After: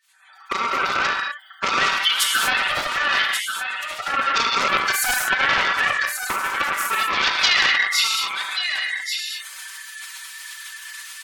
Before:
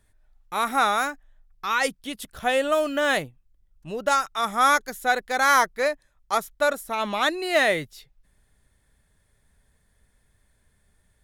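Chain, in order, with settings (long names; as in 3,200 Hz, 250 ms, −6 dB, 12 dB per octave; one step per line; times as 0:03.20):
spectral magnitudes quantised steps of 30 dB
camcorder AGC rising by 74 dB per second
high-shelf EQ 6,200 Hz −7 dB
downward compressor 6 to 1, threshold −22 dBFS, peak gain reduction 9 dB
single-tap delay 1,134 ms −7 dB
reverb reduction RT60 1.2 s
Bessel high-pass filter 1,600 Hz, order 6
comb filter 5.2 ms, depth 68%
reverb whose tail is shaped and stops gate 270 ms flat, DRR −2 dB
gate on every frequency bin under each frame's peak −25 dB strong
highs frequency-modulated by the lows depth 0.31 ms
level +8 dB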